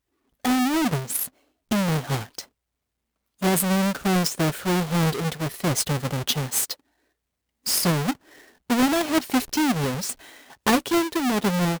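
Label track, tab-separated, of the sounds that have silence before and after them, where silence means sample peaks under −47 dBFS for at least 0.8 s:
3.410000	6.740000	sound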